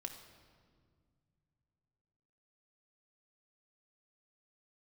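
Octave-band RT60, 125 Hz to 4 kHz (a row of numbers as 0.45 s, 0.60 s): 3.6 s, 3.1 s, 2.2 s, 1.8 s, 1.5 s, 1.3 s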